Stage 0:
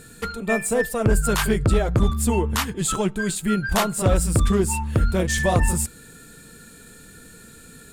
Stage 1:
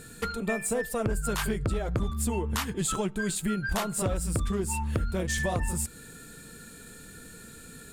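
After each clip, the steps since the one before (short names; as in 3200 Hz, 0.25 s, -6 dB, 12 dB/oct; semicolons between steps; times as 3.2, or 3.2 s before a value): compressor, threshold -24 dBFS, peak gain reduction 10.5 dB; gain -1.5 dB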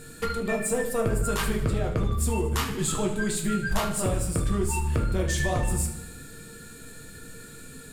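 thinning echo 76 ms, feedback 62%, high-pass 170 Hz, level -13 dB; shoebox room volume 58 m³, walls mixed, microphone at 0.54 m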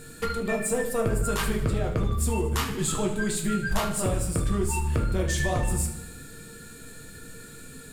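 bit-crush 11-bit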